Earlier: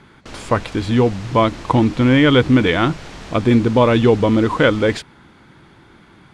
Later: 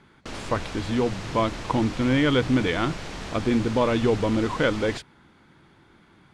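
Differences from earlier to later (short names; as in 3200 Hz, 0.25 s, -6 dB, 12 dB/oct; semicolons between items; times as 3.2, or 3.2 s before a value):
speech -8.5 dB; master: add notches 60/120 Hz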